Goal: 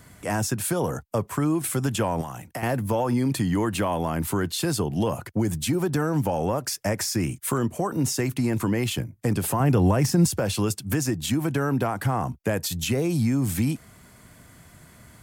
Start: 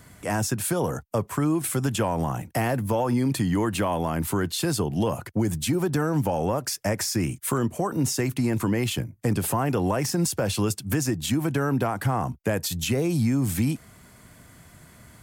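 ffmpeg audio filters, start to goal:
ffmpeg -i in.wav -filter_complex "[0:a]asettb=1/sr,asplit=3[link_01][link_02][link_03];[link_01]atrim=end=2.214[link_04];[link_02]atrim=start=2.21:end=2.63,asetpts=PTS-STARTPTS,afade=type=in:duration=0.004:curve=qsin,afade=type=out:start_time=0.416:duration=0.004:curve=qsin,acrossover=split=710|2200[link_05][link_06][link_07];[link_05]acompressor=threshold=-37dB:ratio=4[link_08];[link_06]acompressor=threshold=-37dB:ratio=4[link_09];[link_07]acompressor=threshold=-42dB:ratio=4[link_10];[link_08][link_09][link_10]amix=inputs=3:normalize=0[link_11];[link_03]atrim=start=2.626[link_12];[link_04][link_11]acrossfade=duration=0.004:curve1=hsin:curve2=qsin[link_13];[link_13][link_12]acrossfade=duration=0.004:curve1=qsin:curve2=hsin,asettb=1/sr,asplit=3[link_14][link_15][link_16];[link_14]atrim=end=9.604[link_17];[link_15]atrim=start=9.6:end=10.39,asetpts=PTS-STARTPTS,afade=type=in:duration=0.004:curve=qsin,afade=type=out:start_time=0.786:duration=0.004:curve=qsin,lowshelf=frequency=190:gain=11.5[link_18];[link_16]atrim=start=10.386[link_19];[link_17][link_18]acrossfade=duration=0.004:curve1=hsin:curve2=qsin[link_20];[link_20][link_19]acrossfade=duration=0.004:curve1=qsin:curve2=hsin" out.wav

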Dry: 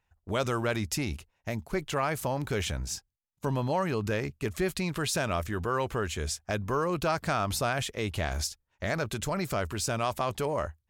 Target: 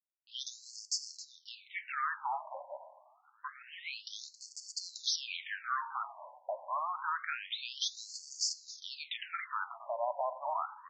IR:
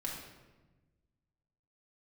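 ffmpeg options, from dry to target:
-filter_complex "[0:a]adynamicequalizer=threshold=0.00501:dfrequency=5300:dqfactor=0.73:tfrequency=5300:tqfactor=0.73:attack=5:release=100:ratio=0.375:range=2.5:mode=boostabove:tftype=bell,alimiter=limit=-21.5dB:level=0:latency=1:release=28,aresample=16000,aeval=exprs='val(0)*gte(abs(val(0)),0.00891)':channel_layout=same,aresample=44100,asplit=5[link_01][link_02][link_03][link_04][link_05];[link_02]adelay=270,afreqshift=-87,volume=-15dB[link_06];[link_03]adelay=540,afreqshift=-174,volume=-22.3dB[link_07];[link_04]adelay=810,afreqshift=-261,volume=-29.7dB[link_08];[link_05]adelay=1080,afreqshift=-348,volume=-37dB[link_09];[link_01][link_06][link_07][link_08][link_09]amix=inputs=5:normalize=0,asplit=2[link_10][link_11];[1:a]atrim=start_sample=2205,asetrate=74970,aresample=44100[link_12];[link_11][link_12]afir=irnorm=-1:irlink=0,volume=-5.5dB[link_13];[link_10][link_13]amix=inputs=2:normalize=0,afftfilt=real='re*between(b*sr/1024,730*pow(6300/730,0.5+0.5*sin(2*PI*0.27*pts/sr))/1.41,730*pow(6300/730,0.5+0.5*sin(2*PI*0.27*pts/sr))*1.41)':imag='im*between(b*sr/1024,730*pow(6300/730,0.5+0.5*sin(2*PI*0.27*pts/sr))/1.41,730*pow(6300/730,0.5+0.5*sin(2*PI*0.27*pts/sr))*1.41)':win_size=1024:overlap=0.75"

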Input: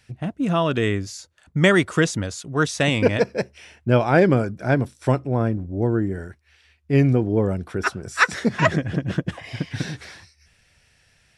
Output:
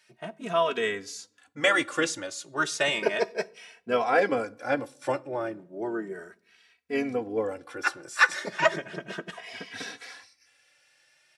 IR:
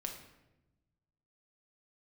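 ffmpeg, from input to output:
-filter_complex "[0:a]highpass=470,asplit=2[link_01][link_02];[link_02]asetrate=37084,aresample=44100,atempo=1.18921,volume=-16dB[link_03];[link_01][link_03]amix=inputs=2:normalize=0,asplit=2[link_04][link_05];[1:a]atrim=start_sample=2205,asetrate=79380,aresample=44100,adelay=18[link_06];[link_05][link_06]afir=irnorm=-1:irlink=0,volume=-11.5dB[link_07];[link_04][link_07]amix=inputs=2:normalize=0,asplit=2[link_08][link_09];[link_09]adelay=2.8,afreqshift=0.34[link_10];[link_08][link_10]amix=inputs=2:normalize=1"

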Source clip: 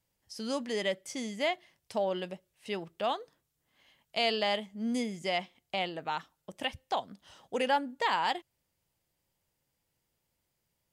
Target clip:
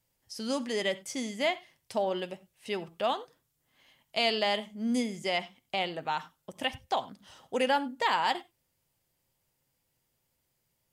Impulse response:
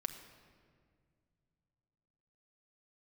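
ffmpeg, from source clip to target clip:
-filter_complex "[0:a]highshelf=frequency=10000:gain=4.5,asplit=2[link_01][link_02];[1:a]atrim=start_sample=2205,atrim=end_sample=3087,asetrate=29988,aresample=44100[link_03];[link_02][link_03]afir=irnorm=-1:irlink=0,volume=2.5dB[link_04];[link_01][link_04]amix=inputs=2:normalize=0,volume=-6dB"

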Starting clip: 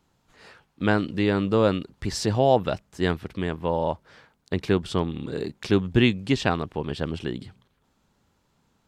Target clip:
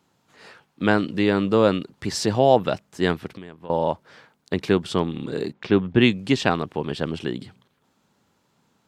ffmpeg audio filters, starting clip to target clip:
ffmpeg -i in.wav -filter_complex "[0:a]highpass=130,asettb=1/sr,asplit=3[link_01][link_02][link_03];[link_01]atrim=end=3.274[link_04];[link_02]atrim=start=3.27:end=3.7,asetpts=PTS-STARTPTS,afade=type=in:duration=0.004:curve=qsin,afade=type=out:start_time=0.426:duration=0.004:curve=qsin,acompressor=threshold=-42dB:ratio=4[link_05];[link_03]atrim=start=3.696[link_06];[link_04][link_05]acrossfade=duration=0.004:curve1=hsin:curve2=qsin[link_07];[link_07][link_06]acrossfade=duration=0.004:curve1=qsin:curve2=hsin,asplit=3[link_08][link_09][link_10];[link_08]afade=type=out:start_time=5.52:duration=0.02[link_11];[link_09]lowpass=2900,afade=type=in:start_time=5.52:duration=0.02,afade=type=out:start_time=6:duration=0.02[link_12];[link_10]afade=type=in:start_time=6:duration=0.02[link_13];[link_11][link_12][link_13]amix=inputs=3:normalize=0,volume=3dB" out.wav

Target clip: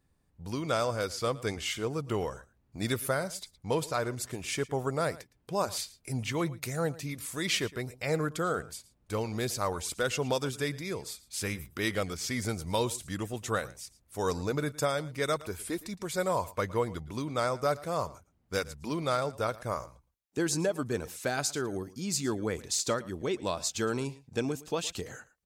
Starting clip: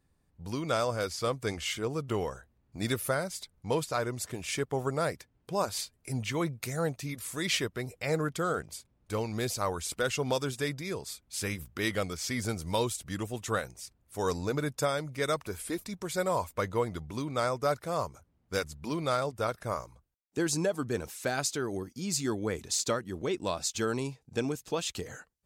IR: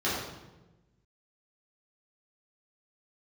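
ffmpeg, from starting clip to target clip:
-af "aecho=1:1:113:0.106"

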